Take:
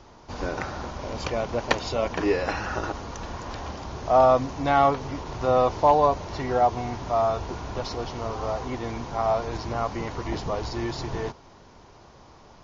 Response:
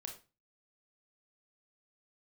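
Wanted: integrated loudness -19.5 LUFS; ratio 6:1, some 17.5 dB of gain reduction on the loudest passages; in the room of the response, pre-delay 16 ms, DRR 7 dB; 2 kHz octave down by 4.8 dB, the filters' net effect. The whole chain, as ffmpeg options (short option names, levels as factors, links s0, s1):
-filter_complex "[0:a]equalizer=f=2000:t=o:g=-6.5,acompressor=threshold=0.02:ratio=6,asplit=2[s0][s1];[1:a]atrim=start_sample=2205,adelay=16[s2];[s1][s2]afir=irnorm=-1:irlink=0,volume=0.668[s3];[s0][s3]amix=inputs=2:normalize=0,volume=7.94"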